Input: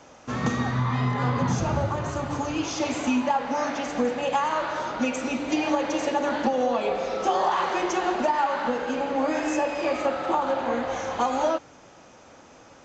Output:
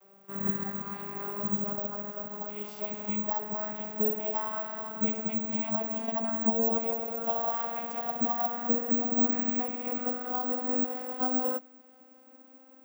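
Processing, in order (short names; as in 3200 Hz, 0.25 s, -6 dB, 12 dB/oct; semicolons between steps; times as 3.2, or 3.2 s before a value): vocoder on a gliding note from G3, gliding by +5 st; careless resampling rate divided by 2×, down none, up zero stuff; gain -8 dB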